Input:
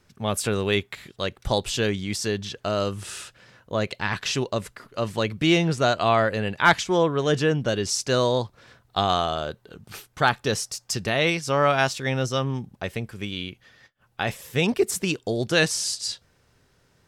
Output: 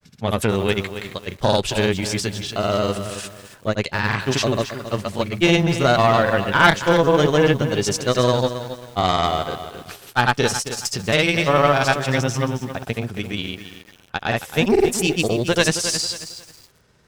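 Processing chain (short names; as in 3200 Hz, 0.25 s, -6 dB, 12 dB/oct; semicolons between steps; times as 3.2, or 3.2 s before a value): grains, pitch spread up and down by 0 st; added harmonics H 3 -33 dB, 4 -17 dB, 5 -26 dB, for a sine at -5.5 dBFS; lo-fi delay 0.271 s, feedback 35%, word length 7-bit, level -10.5 dB; gain +4 dB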